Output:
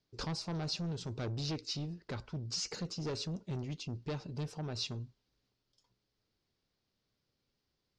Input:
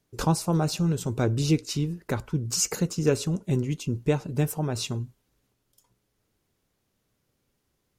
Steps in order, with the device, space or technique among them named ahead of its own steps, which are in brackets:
overdriven synthesiser ladder filter (soft clipping −24.5 dBFS, distortion −10 dB; transistor ladder low-pass 5,400 Hz, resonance 55%)
level +1 dB

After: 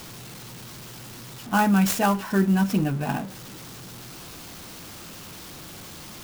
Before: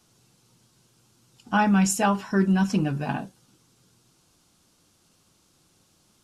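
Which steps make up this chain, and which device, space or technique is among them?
early CD player with a faulty converter (converter with a step at zero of −35 dBFS; converter with an unsteady clock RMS 0.029 ms)

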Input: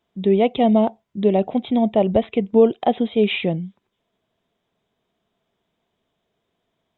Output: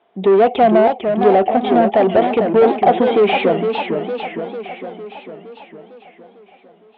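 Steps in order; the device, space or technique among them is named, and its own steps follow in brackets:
overdrive pedal into a guitar cabinet (mid-hump overdrive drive 27 dB, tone 1,400 Hz, clips at −4 dBFS; loudspeaker in its box 76–3,500 Hz, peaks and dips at 150 Hz −10 dB, 410 Hz +5 dB, 740 Hz +8 dB)
feedback echo with a swinging delay time 456 ms, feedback 60%, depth 213 cents, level −6.5 dB
level −4 dB

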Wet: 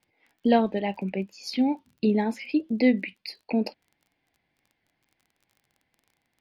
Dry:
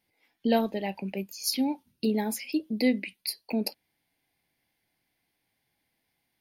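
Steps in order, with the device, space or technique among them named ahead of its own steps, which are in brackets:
lo-fi chain (low-pass filter 3,000 Hz 12 dB per octave; tape wow and flutter; surface crackle 22 per second −51 dBFS)
level +4 dB

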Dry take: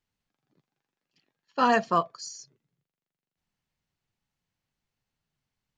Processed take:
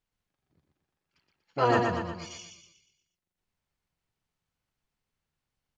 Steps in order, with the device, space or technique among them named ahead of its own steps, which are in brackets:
0:01.86–0:02.31: drawn EQ curve 120 Hz 0 dB, 330 Hz +1 dB, 530 Hz −25 dB, 3,600 Hz 0 dB, 7,000 Hz −8 dB
repeating echo 120 ms, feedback 46%, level −4 dB
octave pedal (pitch-shifted copies added −12 semitones −1 dB)
level −4.5 dB

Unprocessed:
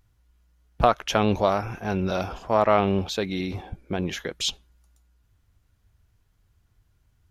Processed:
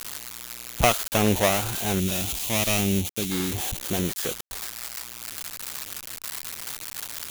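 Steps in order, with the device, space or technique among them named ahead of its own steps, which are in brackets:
noise reduction from a noise print of the clip's start 9 dB
budget class-D amplifier (gap after every zero crossing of 0.3 ms; spike at every zero crossing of −12 dBFS)
0:02.00–0:03.30: flat-topped bell 910 Hz −9 dB 2.5 octaves
level +1 dB

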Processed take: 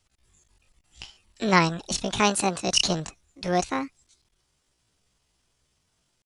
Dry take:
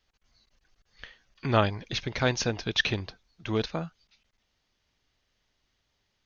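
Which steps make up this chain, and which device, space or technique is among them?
chipmunk voice (pitch shifter +8.5 semitones)
0:02.20–0:02.68: high-pass filter 110 Hz
level +4 dB

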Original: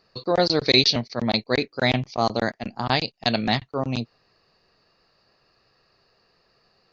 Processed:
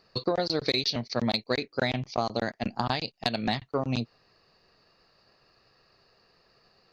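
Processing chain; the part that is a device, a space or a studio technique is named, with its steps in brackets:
0:01.09–0:01.61: high-shelf EQ 3,200 Hz +5.5 dB
drum-bus smash (transient designer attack +5 dB, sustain 0 dB; downward compressor 16 to 1, threshold −22 dBFS, peak gain reduction 13 dB; soft clipping −11 dBFS, distortion −22 dB)

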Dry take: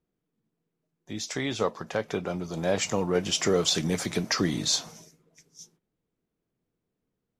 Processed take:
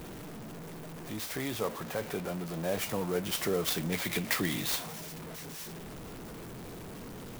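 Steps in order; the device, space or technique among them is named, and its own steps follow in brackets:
0:03.92–0:04.66: flat-topped bell 2,700 Hz +10 dB 1.3 octaves
early CD player with a faulty converter (converter with a step at zero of −29 dBFS; converter with an unsteady clock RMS 0.041 ms)
level −8 dB

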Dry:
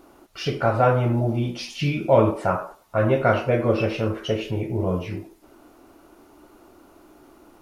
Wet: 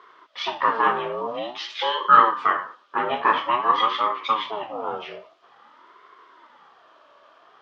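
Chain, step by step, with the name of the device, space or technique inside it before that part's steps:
voice changer toy (ring modulator whose carrier an LFO sweeps 500 Hz, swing 45%, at 0.49 Hz; loudspeaker in its box 540–4,800 Hz, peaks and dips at 740 Hz −5 dB, 1,200 Hz +9 dB, 3,200 Hz +8 dB)
level +2.5 dB

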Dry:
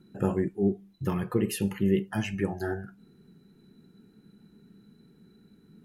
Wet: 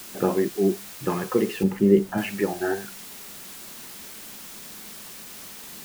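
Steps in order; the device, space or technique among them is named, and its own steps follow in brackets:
wax cylinder (band-pass filter 280–2,400 Hz; tape wow and flutter; white noise bed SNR 13 dB)
0:01.63–0:02.18: tilt shelving filter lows +7 dB, about 650 Hz
level +7.5 dB

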